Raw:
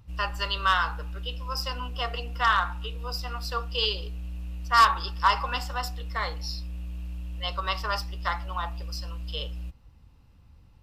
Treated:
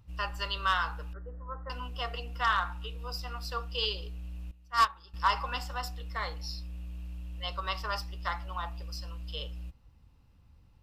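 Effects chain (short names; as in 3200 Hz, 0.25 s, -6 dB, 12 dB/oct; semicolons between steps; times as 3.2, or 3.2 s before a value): 1.13–1.7 rippled Chebyshev low-pass 1900 Hz, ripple 3 dB; 4.51–5.14 upward expander 2.5:1, over -25 dBFS; gain -5 dB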